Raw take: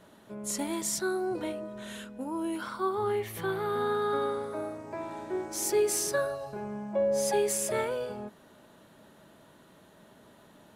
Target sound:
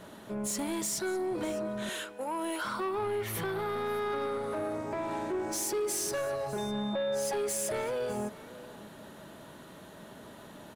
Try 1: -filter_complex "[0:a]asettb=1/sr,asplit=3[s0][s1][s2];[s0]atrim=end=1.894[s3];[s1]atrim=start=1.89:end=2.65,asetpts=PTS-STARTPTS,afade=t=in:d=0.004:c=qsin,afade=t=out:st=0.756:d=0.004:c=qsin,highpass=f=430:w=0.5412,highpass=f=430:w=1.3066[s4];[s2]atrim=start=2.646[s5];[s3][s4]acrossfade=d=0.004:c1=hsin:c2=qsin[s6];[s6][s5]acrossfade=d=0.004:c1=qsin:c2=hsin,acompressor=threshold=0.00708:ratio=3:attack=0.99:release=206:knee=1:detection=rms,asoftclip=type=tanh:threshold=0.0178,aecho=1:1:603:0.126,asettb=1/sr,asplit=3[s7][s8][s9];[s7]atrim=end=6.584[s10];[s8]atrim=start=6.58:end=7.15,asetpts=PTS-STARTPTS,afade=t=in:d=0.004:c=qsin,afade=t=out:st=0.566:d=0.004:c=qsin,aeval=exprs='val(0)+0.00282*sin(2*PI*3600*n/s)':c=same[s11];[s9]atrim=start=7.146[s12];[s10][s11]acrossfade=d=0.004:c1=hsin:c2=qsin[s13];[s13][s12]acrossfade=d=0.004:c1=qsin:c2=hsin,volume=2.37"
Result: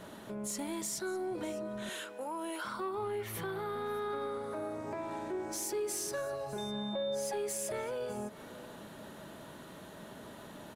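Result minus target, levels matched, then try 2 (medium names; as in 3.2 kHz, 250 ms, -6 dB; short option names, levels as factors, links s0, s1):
compression: peak gain reduction +6.5 dB
-filter_complex "[0:a]asettb=1/sr,asplit=3[s0][s1][s2];[s0]atrim=end=1.894[s3];[s1]atrim=start=1.89:end=2.65,asetpts=PTS-STARTPTS,afade=t=in:d=0.004:c=qsin,afade=t=out:st=0.756:d=0.004:c=qsin,highpass=f=430:w=0.5412,highpass=f=430:w=1.3066[s4];[s2]atrim=start=2.646[s5];[s3][s4]acrossfade=d=0.004:c1=hsin:c2=qsin[s6];[s6][s5]acrossfade=d=0.004:c1=qsin:c2=hsin,acompressor=threshold=0.0211:ratio=3:attack=0.99:release=206:knee=1:detection=rms,asoftclip=type=tanh:threshold=0.0178,aecho=1:1:603:0.126,asettb=1/sr,asplit=3[s7][s8][s9];[s7]atrim=end=6.584[s10];[s8]atrim=start=6.58:end=7.15,asetpts=PTS-STARTPTS,afade=t=in:d=0.004:c=qsin,afade=t=out:st=0.566:d=0.004:c=qsin,aeval=exprs='val(0)+0.00282*sin(2*PI*3600*n/s)':c=same[s11];[s9]atrim=start=7.146[s12];[s10][s11]acrossfade=d=0.004:c1=hsin:c2=qsin[s13];[s13][s12]acrossfade=d=0.004:c1=qsin:c2=hsin,volume=2.37"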